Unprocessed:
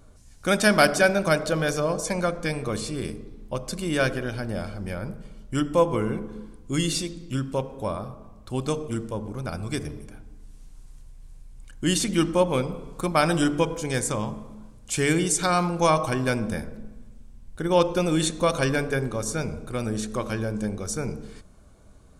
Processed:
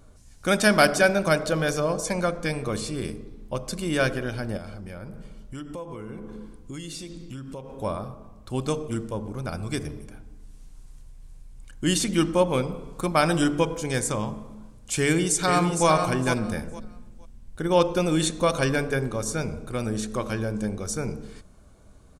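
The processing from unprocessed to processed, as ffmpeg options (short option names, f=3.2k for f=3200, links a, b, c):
-filter_complex "[0:a]asettb=1/sr,asplit=3[a][b][c];[a]atrim=end=4.574[d];[b]atrim=start=4.57:end=7.71,asetpts=PTS-STARTPTS,afade=t=in:d=0.004:c=qsin,afade=t=out:st=3.136:d=0.004:c=qsin,acompressor=threshold=-34dB:ratio=5:attack=3.2:release=140:knee=1:detection=peak[e];[c]atrim=start=7.706[f];[d][e]acrossfade=d=0.004:c1=hsin:c2=qsin[g];[g][f]acrossfade=d=0.004:c1=qsin:c2=hsin,asplit=2[h][i];[i]afade=t=in:st=15.01:d=0.01,afade=t=out:st=15.87:d=0.01,aecho=0:1:460|920|1380:0.473151|0.0946303|0.0189261[j];[h][j]amix=inputs=2:normalize=0"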